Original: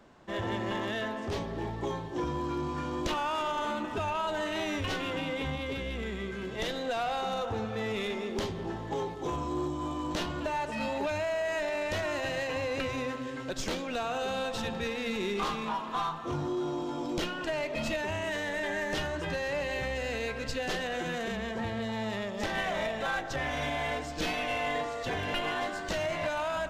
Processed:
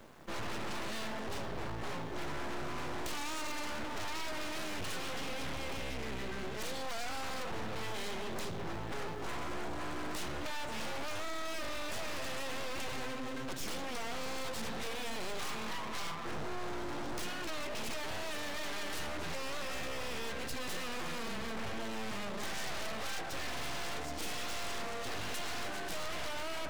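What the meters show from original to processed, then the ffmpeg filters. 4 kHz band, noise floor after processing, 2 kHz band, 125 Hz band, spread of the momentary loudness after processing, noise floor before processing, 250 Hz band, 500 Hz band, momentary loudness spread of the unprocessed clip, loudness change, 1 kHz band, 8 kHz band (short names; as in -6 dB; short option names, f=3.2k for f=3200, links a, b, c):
-3.0 dB, -39 dBFS, -6.0 dB, -8.0 dB, 2 LU, -38 dBFS, -8.5 dB, -9.5 dB, 4 LU, -6.5 dB, -7.5 dB, +2.0 dB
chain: -af "aeval=exprs='0.106*(cos(1*acos(clip(val(0)/0.106,-1,1)))-cos(1*PI/2))+0.00944*(cos(5*acos(clip(val(0)/0.106,-1,1)))-cos(5*PI/2))+0.0422*(cos(6*acos(clip(val(0)/0.106,-1,1)))-cos(6*PI/2))':c=same,asoftclip=type=tanh:threshold=-34.5dB,acrusher=bits=8:dc=4:mix=0:aa=0.000001,volume=1.5dB"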